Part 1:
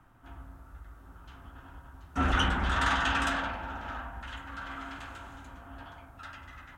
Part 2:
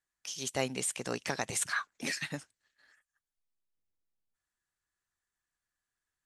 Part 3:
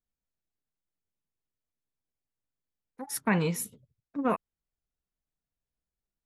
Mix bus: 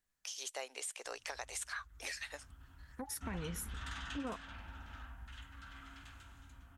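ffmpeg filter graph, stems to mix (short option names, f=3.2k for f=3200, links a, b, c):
-filter_complex "[0:a]equalizer=f=610:w=0.44:g=-15,adelay=1050,volume=-5.5dB[a];[1:a]highpass=f=480:w=0.5412,highpass=f=480:w=1.3066,volume=-0.5dB[b];[2:a]alimiter=limit=-24dB:level=0:latency=1,volume=1.5dB[c];[a][b][c]amix=inputs=3:normalize=0,acompressor=threshold=-42dB:ratio=3"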